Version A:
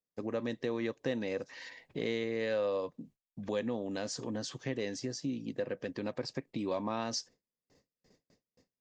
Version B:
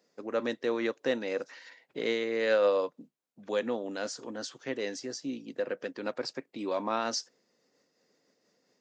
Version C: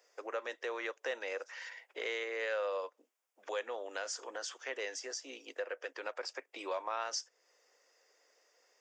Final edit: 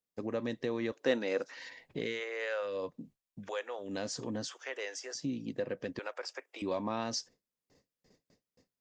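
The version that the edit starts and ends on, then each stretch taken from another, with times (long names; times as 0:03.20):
A
0:00.92–0:01.57: punch in from B
0:02.10–0:02.72: punch in from C, crossfade 0.24 s
0:03.43–0:03.86: punch in from C, crossfade 0.16 s
0:04.48–0:05.15: punch in from C
0:05.99–0:06.62: punch in from C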